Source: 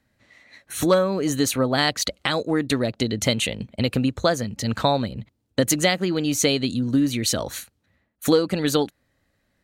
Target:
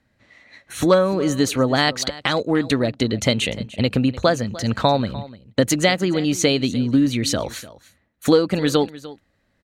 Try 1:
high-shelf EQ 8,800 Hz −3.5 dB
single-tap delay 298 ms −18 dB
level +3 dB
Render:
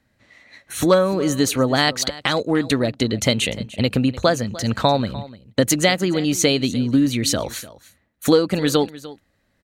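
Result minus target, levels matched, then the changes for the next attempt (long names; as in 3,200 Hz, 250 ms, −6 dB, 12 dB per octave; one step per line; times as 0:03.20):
8,000 Hz band +3.0 dB
change: high-shelf EQ 8,800 Hz −12.5 dB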